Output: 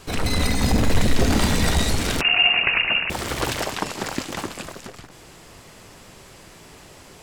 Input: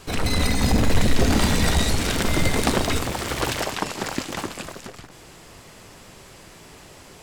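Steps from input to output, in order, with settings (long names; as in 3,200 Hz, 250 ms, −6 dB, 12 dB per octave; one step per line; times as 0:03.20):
0:02.21–0:03.10: voice inversion scrambler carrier 2,800 Hz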